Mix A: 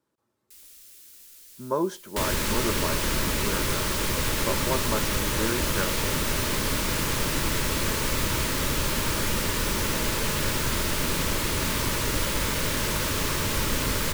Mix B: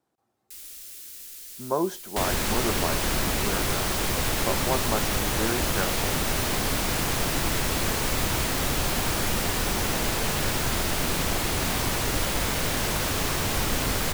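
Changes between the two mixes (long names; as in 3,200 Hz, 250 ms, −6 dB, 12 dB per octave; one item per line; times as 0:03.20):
first sound +7.5 dB
master: remove Butterworth band-reject 740 Hz, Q 4.1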